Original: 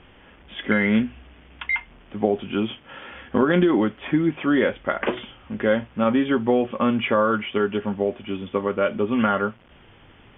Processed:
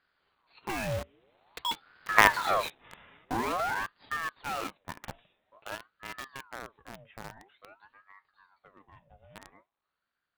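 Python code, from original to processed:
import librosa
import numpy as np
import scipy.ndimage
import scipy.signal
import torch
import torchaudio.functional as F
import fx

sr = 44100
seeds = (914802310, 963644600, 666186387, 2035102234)

p1 = np.minimum(x, 2.0 * 10.0 ** (-12.5 / 20.0) - x)
p2 = fx.doppler_pass(p1, sr, speed_mps=9, closest_m=1.9, pass_at_s=2.31)
p3 = fx.quant_companded(p2, sr, bits=2)
p4 = p2 + F.gain(torch.from_numpy(p3), -3.0).numpy()
p5 = fx.ring_lfo(p4, sr, carrier_hz=920.0, swing_pct=65, hz=0.49)
y = F.gain(torch.from_numpy(p5), -2.0).numpy()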